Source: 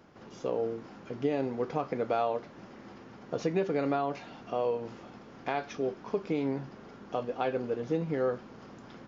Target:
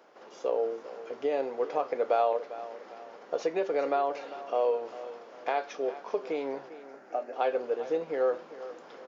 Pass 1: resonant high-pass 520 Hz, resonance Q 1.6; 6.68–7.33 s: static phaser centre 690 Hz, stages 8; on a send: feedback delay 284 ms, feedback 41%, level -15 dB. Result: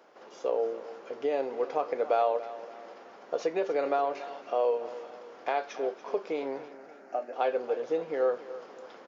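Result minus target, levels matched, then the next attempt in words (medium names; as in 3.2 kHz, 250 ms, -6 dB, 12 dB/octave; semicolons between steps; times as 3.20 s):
echo 116 ms early
resonant high-pass 520 Hz, resonance Q 1.6; 6.68–7.33 s: static phaser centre 690 Hz, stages 8; on a send: feedback delay 400 ms, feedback 41%, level -15 dB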